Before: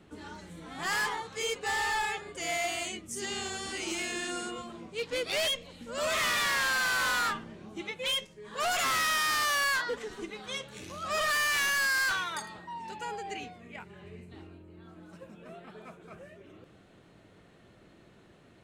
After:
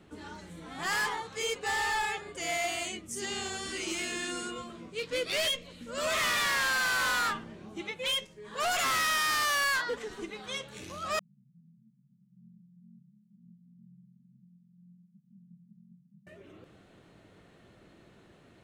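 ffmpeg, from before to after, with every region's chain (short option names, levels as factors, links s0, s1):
-filter_complex "[0:a]asettb=1/sr,asplit=3[s0][s1][s2];[s0]atrim=end=3.644[s3];[s1]atrim=start=3.64:end=6.06,asetpts=PTS-STARTPTS,afade=t=in:d=0.004:c=qsin,afade=t=out:st=2.416:d=0.004:c=qsin,equalizer=f=810:t=o:w=0.34:g=-9.5,asplit=2[s4][s5];[s5]adelay=16,volume=0.299[s6];[s4][s6]amix=inputs=2:normalize=0,atrim=end_sample=106722[s7];[s2]atrim=start=6.056[s8];[s3][s7]acrossfade=d=0.004:c1=hsin:c2=qsin[s9];[s9][s8]acrossfade=d=0.004:c1=qsin:c2=hsin,asettb=1/sr,asplit=3[s10][s11][s12];[s10]atrim=end=11.194[s13];[s11]atrim=start=11.19:end=16.27,asetpts=PTS-STARTPTS,afade=t=in:d=0.004:c=qsin,afade=t=out:st=5.076:d=0.004:c=qsin,flanger=delay=20:depth=4.1:speed=1,asuperpass=centerf=170:order=12:qfactor=1.8[s14];[s12]atrim=start=16.266[s15];[s13][s14]acrossfade=d=0.004:c1=hsin:c2=qsin[s16];[s16][s15]acrossfade=d=0.004:c1=qsin:c2=hsin"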